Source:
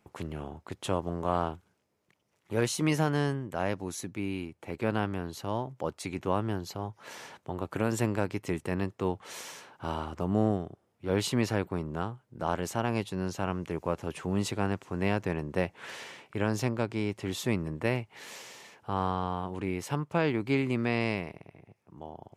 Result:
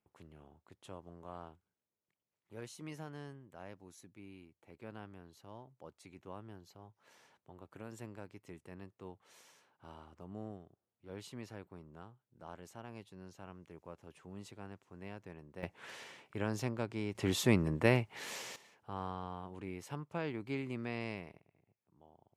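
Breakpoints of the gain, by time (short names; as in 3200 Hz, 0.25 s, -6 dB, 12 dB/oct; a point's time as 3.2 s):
-19.5 dB
from 15.63 s -7.5 dB
from 17.15 s +1 dB
from 18.56 s -11.5 dB
from 21.4 s -19.5 dB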